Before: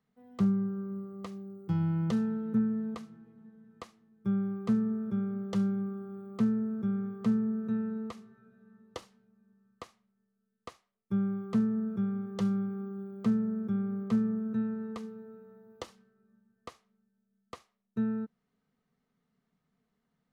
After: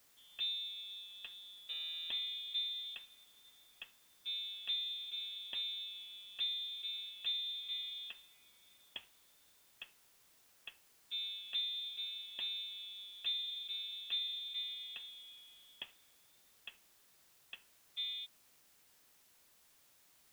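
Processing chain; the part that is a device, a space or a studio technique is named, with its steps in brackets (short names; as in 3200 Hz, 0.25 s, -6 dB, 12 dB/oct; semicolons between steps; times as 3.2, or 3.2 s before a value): scrambled radio voice (BPF 310–2900 Hz; inverted band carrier 3800 Hz; white noise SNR 23 dB); gain -4.5 dB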